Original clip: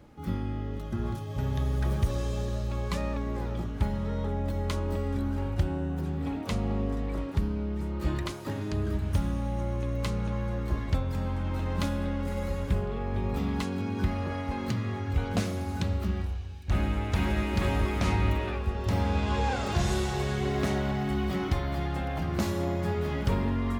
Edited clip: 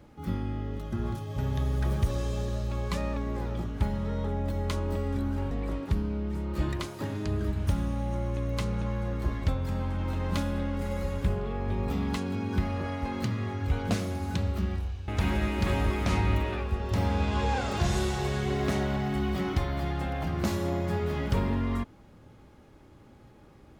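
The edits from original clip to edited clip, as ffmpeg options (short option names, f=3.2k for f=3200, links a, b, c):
-filter_complex "[0:a]asplit=3[a][b][c];[a]atrim=end=5.512[d];[b]atrim=start=6.968:end=16.542[e];[c]atrim=start=17.028[f];[d][e]acrossfade=d=0.004:c1=hsin:c2=hsin[g];[g][f]acrossfade=d=0.004:c1=hsin:c2=hsin"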